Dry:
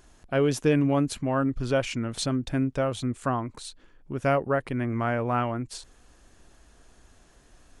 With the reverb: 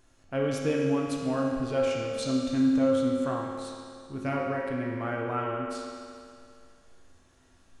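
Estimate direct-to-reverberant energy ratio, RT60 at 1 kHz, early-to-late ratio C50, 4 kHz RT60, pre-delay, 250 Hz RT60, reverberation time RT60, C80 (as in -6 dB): -3.0 dB, 2.3 s, 0.0 dB, 2.3 s, 4 ms, 2.3 s, 2.3 s, 1.5 dB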